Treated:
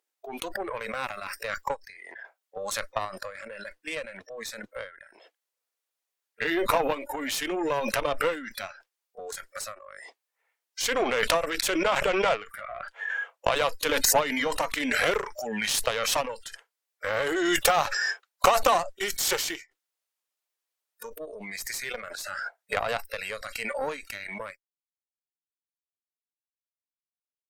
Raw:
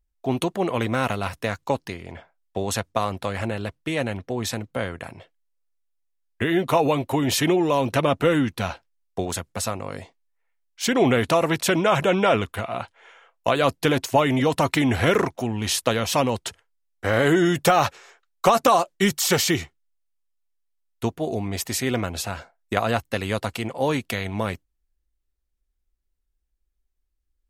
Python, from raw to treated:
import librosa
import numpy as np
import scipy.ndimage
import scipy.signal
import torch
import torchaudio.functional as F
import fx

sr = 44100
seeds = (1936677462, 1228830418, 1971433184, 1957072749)

y = scipy.signal.sosfilt(scipy.signal.butter(4, 380.0, 'highpass', fs=sr, output='sos'), x)
y = fx.noise_reduce_blind(y, sr, reduce_db=24)
y = fx.cheby_harmonics(y, sr, harmonics=(3, 6, 7), levels_db=(-20, -25, -29), full_scale_db=-5.0)
y = fx.pre_swell(y, sr, db_per_s=22.0)
y = y * 10.0 ** (-2.5 / 20.0)